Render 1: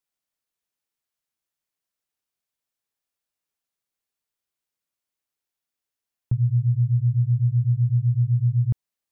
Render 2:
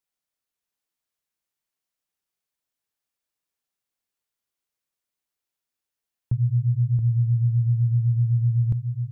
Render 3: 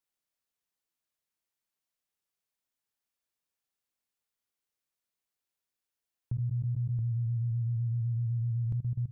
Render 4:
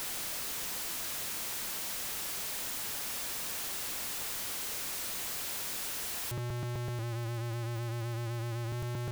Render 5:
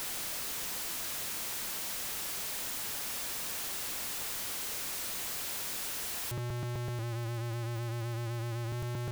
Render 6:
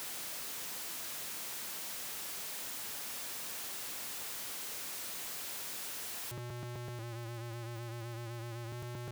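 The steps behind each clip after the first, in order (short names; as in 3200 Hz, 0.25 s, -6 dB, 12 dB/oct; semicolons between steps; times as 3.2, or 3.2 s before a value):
echo 0.676 s -6 dB; gain -1 dB
level quantiser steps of 15 dB
infinite clipping
nothing audible
HPF 120 Hz 6 dB/oct; gain -4.5 dB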